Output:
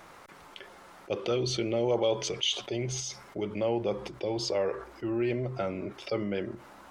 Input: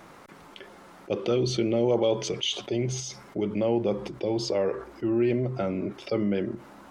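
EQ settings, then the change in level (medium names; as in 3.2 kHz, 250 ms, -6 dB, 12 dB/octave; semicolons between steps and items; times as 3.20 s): peaking EQ 220 Hz -8 dB 1.9 oct; 0.0 dB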